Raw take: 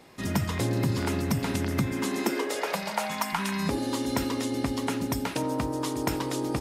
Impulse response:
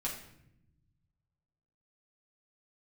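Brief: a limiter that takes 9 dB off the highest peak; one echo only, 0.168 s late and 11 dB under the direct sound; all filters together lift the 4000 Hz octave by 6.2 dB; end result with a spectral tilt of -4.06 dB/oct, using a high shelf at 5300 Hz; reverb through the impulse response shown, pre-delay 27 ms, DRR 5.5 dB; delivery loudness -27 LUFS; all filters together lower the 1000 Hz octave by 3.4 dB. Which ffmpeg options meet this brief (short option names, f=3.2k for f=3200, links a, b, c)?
-filter_complex "[0:a]equalizer=f=1k:t=o:g=-4.5,equalizer=f=4k:t=o:g=6.5,highshelf=f=5.3k:g=3.5,alimiter=limit=-20.5dB:level=0:latency=1,aecho=1:1:168:0.282,asplit=2[a][b];[1:a]atrim=start_sample=2205,adelay=27[c];[b][c]afir=irnorm=-1:irlink=0,volume=-8dB[d];[a][d]amix=inputs=2:normalize=0,volume=2.5dB"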